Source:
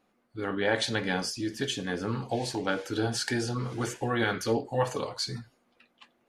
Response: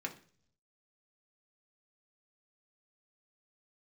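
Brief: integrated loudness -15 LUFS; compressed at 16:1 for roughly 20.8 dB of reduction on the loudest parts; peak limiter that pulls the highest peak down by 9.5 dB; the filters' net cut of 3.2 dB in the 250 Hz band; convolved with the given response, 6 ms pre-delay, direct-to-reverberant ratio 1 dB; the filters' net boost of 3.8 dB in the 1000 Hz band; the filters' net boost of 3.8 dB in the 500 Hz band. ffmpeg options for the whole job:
-filter_complex "[0:a]equalizer=f=250:t=o:g=-7,equalizer=f=500:t=o:g=5.5,equalizer=f=1k:t=o:g=3.5,acompressor=threshold=-39dB:ratio=16,alimiter=level_in=11.5dB:limit=-24dB:level=0:latency=1,volume=-11.5dB,asplit=2[a][b];[1:a]atrim=start_sample=2205,adelay=6[c];[b][c]afir=irnorm=-1:irlink=0,volume=-2dB[d];[a][d]amix=inputs=2:normalize=0,volume=29dB"

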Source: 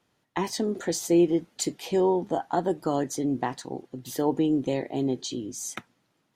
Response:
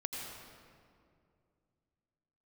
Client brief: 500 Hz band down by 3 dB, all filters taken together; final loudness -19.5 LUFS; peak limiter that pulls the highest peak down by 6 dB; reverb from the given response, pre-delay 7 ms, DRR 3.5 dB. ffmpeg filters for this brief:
-filter_complex "[0:a]equalizer=f=500:t=o:g=-4.5,alimiter=limit=-19.5dB:level=0:latency=1,asplit=2[a][b];[1:a]atrim=start_sample=2205,adelay=7[c];[b][c]afir=irnorm=-1:irlink=0,volume=-5dB[d];[a][d]amix=inputs=2:normalize=0,volume=10dB"

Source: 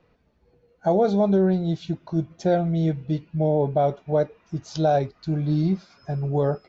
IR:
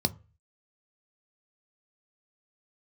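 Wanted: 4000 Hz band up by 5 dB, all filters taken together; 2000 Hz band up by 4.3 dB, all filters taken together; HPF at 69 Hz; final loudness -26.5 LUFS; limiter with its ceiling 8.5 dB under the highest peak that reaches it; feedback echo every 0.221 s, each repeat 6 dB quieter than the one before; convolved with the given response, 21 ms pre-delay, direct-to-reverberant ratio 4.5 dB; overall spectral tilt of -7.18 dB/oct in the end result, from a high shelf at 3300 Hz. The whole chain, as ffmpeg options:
-filter_complex "[0:a]highpass=69,equalizer=f=2k:t=o:g=6,highshelf=f=3.3k:g=-4,equalizer=f=4k:t=o:g=7,alimiter=limit=-18dB:level=0:latency=1,aecho=1:1:221|442|663|884|1105|1326:0.501|0.251|0.125|0.0626|0.0313|0.0157,asplit=2[a][b];[1:a]atrim=start_sample=2205,adelay=21[c];[b][c]afir=irnorm=-1:irlink=0,volume=-11.5dB[d];[a][d]amix=inputs=2:normalize=0,volume=-6dB"

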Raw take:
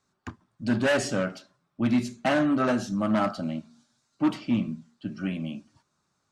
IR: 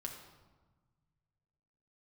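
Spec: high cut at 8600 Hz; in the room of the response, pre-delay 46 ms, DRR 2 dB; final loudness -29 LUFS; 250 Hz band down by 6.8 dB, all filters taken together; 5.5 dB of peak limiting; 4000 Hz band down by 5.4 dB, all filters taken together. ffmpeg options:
-filter_complex "[0:a]lowpass=8.6k,equalizer=f=250:t=o:g=-8,equalizer=f=4k:t=o:g=-8,alimiter=limit=-20.5dB:level=0:latency=1,asplit=2[a][b];[1:a]atrim=start_sample=2205,adelay=46[c];[b][c]afir=irnorm=-1:irlink=0,volume=0dB[d];[a][d]amix=inputs=2:normalize=0,volume=2dB"

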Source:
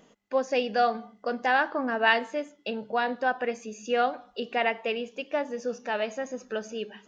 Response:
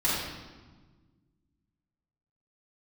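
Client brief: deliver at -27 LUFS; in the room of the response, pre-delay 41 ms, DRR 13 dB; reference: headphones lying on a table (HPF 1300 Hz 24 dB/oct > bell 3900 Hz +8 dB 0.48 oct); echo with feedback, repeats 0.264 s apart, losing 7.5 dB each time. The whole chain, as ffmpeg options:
-filter_complex "[0:a]aecho=1:1:264|528|792|1056|1320:0.422|0.177|0.0744|0.0312|0.0131,asplit=2[a][b];[1:a]atrim=start_sample=2205,adelay=41[c];[b][c]afir=irnorm=-1:irlink=0,volume=-25dB[d];[a][d]amix=inputs=2:normalize=0,highpass=f=1.3k:w=0.5412,highpass=f=1.3k:w=1.3066,equalizer=f=3.9k:t=o:w=0.48:g=8,volume=4.5dB"

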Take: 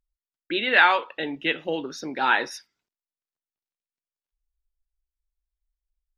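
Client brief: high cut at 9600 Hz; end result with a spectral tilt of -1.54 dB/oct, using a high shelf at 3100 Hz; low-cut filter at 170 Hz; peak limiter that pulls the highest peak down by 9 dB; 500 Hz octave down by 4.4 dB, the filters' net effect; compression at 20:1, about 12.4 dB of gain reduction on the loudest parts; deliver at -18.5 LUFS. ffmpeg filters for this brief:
-af "highpass=170,lowpass=9.6k,equalizer=f=500:t=o:g=-5.5,highshelf=f=3.1k:g=7.5,acompressor=threshold=-22dB:ratio=20,volume=13dB,alimiter=limit=-7dB:level=0:latency=1"

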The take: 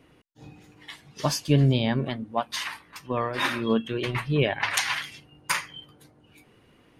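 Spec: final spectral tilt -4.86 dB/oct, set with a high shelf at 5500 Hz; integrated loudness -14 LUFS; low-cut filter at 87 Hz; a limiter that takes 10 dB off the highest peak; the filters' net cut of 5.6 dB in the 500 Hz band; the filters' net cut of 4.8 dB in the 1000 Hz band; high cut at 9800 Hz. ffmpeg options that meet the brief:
-af "highpass=87,lowpass=9.8k,equalizer=f=500:t=o:g=-6,equalizer=f=1k:t=o:g=-4,highshelf=f=5.5k:g=-7,volume=18dB,alimiter=limit=-2.5dB:level=0:latency=1"

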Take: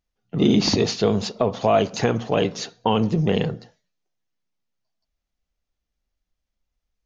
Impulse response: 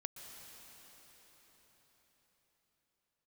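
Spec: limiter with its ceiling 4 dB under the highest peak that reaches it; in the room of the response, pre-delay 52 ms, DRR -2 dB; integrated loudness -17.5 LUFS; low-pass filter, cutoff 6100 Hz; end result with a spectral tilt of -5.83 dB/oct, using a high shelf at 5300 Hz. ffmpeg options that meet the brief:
-filter_complex "[0:a]lowpass=6.1k,highshelf=f=5.3k:g=-5,alimiter=limit=-10.5dB:level=0:latency=1,asplit=2[a][b];[1:a]atrim=start_sample=2205,adelay=52[c];[b][c]afir=irnorm=-1:irlink=0,volume=4.5dB[d];[a][d]amix=inputs=2:normalize=0,volume=2dB"

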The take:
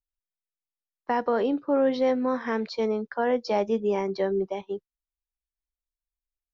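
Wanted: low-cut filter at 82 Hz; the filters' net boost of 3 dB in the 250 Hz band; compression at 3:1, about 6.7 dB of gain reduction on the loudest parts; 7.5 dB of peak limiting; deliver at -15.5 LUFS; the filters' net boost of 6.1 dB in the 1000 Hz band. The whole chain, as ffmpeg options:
-af "highpass=82,equalizer=f=250:t=o:g=3,equalizer=f=1k:t=o:g=7.5,acompressor=threshold=-25dB:ratio=3,volume=15dB,alimiter=limit=-6dB:level=0:latency=1"

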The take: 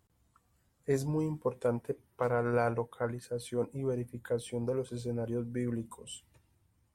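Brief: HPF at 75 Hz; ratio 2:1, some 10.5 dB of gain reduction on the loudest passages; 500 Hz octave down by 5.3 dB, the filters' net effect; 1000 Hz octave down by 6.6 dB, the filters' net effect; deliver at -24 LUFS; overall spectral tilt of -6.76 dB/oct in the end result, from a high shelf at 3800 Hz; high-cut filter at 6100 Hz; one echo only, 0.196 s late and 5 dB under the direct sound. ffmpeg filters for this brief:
-af "highpass=75,lowpass=6.1k,equalizer=f=500:t=o:g=-4.5,equalizer=f=1k:t=o:g=-7.5,highshelf=f=3.8k:g=-5,acompressor=threshold=-48dB:ratio=2,aecho=1:1:196:0.562,volume=22dB"

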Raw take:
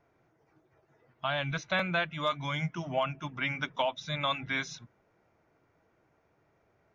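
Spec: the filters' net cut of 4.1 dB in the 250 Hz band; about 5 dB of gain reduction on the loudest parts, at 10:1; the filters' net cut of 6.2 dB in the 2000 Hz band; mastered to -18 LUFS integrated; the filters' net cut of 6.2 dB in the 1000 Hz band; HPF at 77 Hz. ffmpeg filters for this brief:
-af "highpass=77,equalizer=f=250:t=o:g=-6.5,equalizer=f=1k:t=o:g=-6,equalizer=f=2k:t=o:g=-6,acompressor=threshold=-34dB:ratio=10,volume=22dB"

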